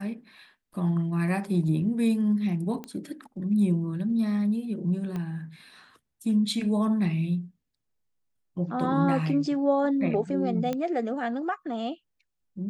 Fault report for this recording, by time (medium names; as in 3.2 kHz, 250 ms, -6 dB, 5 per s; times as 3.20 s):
2.84 s: pop -23 dBFS
5.16 s: pop -22 dBFS
10.73 s: pop -17 dBFS